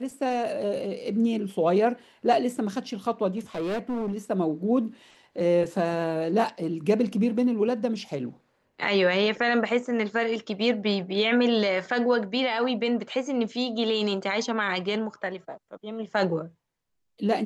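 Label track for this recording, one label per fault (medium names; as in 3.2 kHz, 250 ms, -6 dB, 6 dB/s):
3.380000	4.180000	clipped -25.5 dBFS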